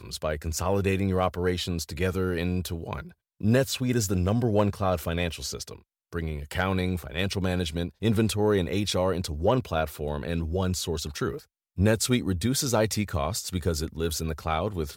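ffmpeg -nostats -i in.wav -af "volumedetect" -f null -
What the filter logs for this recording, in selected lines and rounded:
mean_volume: -27.1 dB
max_volume: -10.8 dB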